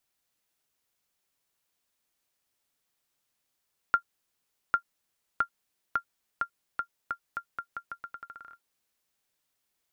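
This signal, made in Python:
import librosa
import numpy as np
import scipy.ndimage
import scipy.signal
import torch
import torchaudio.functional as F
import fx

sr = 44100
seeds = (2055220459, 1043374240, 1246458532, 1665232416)

y = fx.bouncing_ball(sr, first_gap_s=0.8, ratio=0.83, hz=1390.0, decay_ms=86.0, level_db=-11.5)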